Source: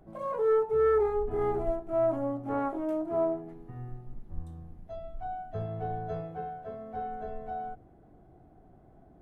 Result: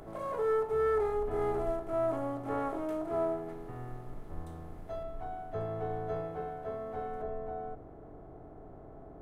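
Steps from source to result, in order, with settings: spectral levelling over time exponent 0.6; treble shelf 2.3 kHz +9.5 dB, from 5.03 s +4 dB, from 7.22 s -10 dB; trim -6 dB

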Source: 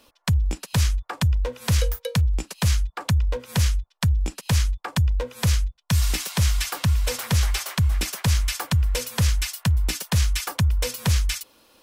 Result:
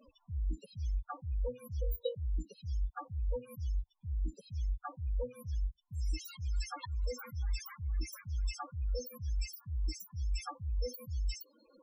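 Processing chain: slow attack 794 ms; loudest bins only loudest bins 8; trim +2 dB

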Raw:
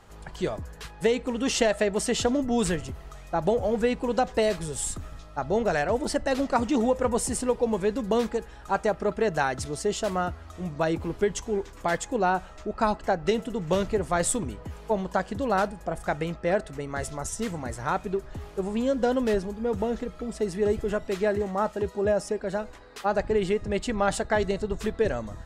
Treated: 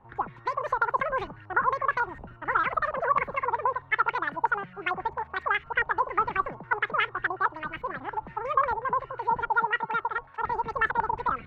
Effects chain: wide varispeed 2.22×; step-sequenced low-pass 11 Hz 900–2300 Hz; trim -7 dB

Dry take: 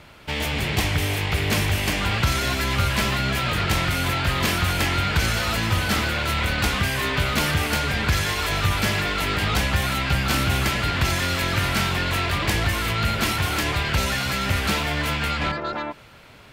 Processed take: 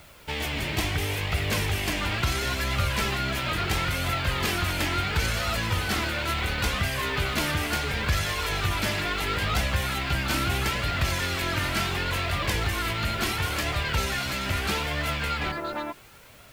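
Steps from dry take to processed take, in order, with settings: flange 0.73 Hz, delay 1.4 ms, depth 2 ms, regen +53%; added noise white -57 dBFS

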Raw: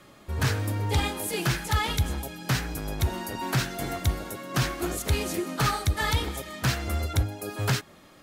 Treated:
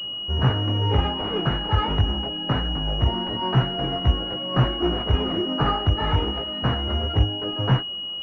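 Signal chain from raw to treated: chorus 0.25 Hz, delay 15.5 ms, depth 4.3 ms; class-D stage that switches slowly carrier 2.9 kHz; trim +8.5 dB

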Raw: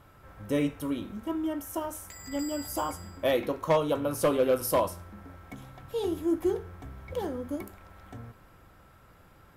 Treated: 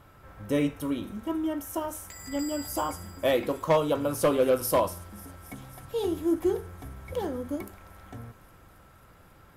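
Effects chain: feedback echo behind a high-pass 271 ms, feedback 83%, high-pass 5.6 kHz, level -16.5 dB; trim +1.5 dB

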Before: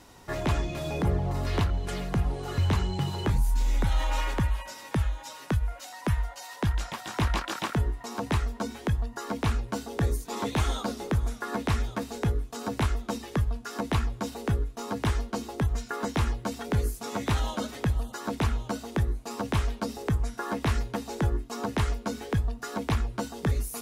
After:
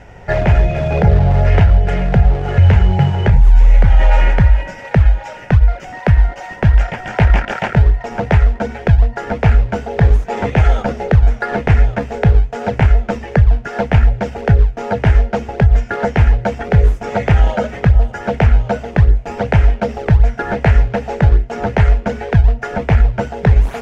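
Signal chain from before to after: static phaser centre 1.1 kHz, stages 6; in parallel at -7 dB: decimation with a swept rate 33×, swing 160% 2.6 Hz; on the sum: distance through air 190 m; loudness maximiser +17.5 dB; trim -1 dB

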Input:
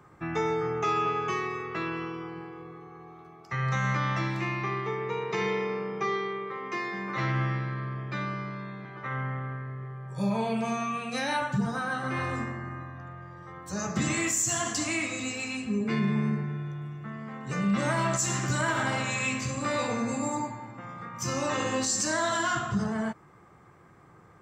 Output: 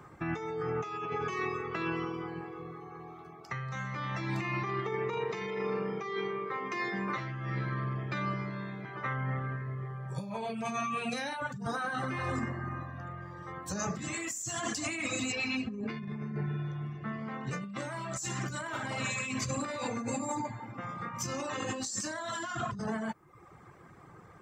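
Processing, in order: 15.32–17.51 s: low-pass 5.7 kHz 24 dB/octave; reverb removal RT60 0.7 s; compressor with a negative ratio -35 dBFS, ratio -1

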